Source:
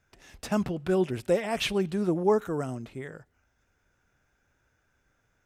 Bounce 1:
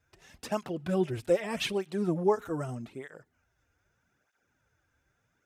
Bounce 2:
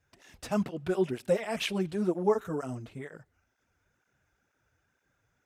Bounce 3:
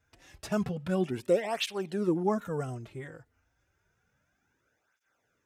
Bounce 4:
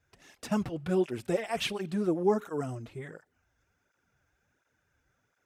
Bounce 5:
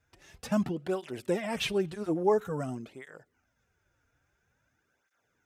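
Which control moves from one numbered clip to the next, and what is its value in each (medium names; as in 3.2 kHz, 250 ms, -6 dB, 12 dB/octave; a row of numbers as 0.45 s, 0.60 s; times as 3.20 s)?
cancelling through-zero flanger, nulls at: 0.81 Hz, 2.1 Hz, 0.3 Hz, 1.4 Hz, 0.49 Hz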